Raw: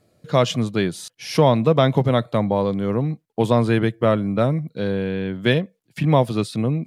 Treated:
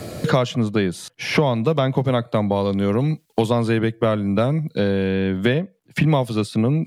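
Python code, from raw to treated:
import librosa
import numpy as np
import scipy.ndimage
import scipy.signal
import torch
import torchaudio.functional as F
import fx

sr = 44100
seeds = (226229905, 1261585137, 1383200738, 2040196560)

y = fx.band_squash(x, sr, depth_pct=100)
y = y * librosa.db_to_amplitude(-1.0)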